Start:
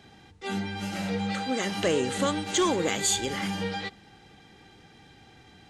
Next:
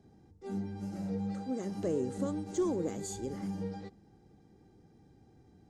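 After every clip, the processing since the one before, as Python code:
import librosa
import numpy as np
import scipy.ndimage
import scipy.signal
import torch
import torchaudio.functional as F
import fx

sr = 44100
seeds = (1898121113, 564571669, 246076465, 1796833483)

y = fx.curve_eq(x, sr, hz=(360.0, 3200.0, 5200.0), db=(0, -25, -12))
y = y * 10.0 ** (-4.5 / 20.0)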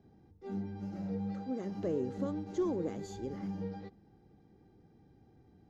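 y = scipy.signal.lfilter(np.full(5, 1.0 / 5), 1.0, x)
y = y * 10.0 ** (-1.5 / 20.0)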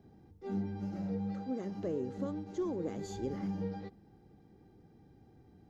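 y = fx.rider(x, sr, range_db=10, speed_s=0.5)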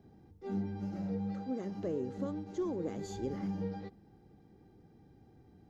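y = x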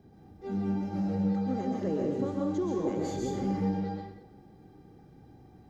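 y = fx.rev_plate(x, sr, seeds[0], rt60_s=0.79, hf_ratio=0.85, predelay_ms=115, drr_db=-2.0)
y = y * 10.0 ** (3.0 / 20.0)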